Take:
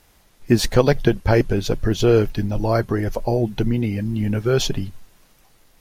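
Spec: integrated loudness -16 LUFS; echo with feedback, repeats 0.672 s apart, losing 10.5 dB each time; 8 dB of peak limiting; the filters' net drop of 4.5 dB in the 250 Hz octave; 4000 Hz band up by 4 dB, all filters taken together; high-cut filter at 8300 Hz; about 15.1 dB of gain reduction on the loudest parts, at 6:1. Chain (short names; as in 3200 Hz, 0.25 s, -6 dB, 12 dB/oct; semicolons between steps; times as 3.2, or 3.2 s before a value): LPF 8300 Hz; bell 250 Hz -6.5 dB; bell 4000 Hz +5 dB; compressor 6:1, threshold -29 dBFS; limiter -24.5 dBFS; feedback echo 0.672 s, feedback 30%, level -10.5 dB; gain +19.5 dB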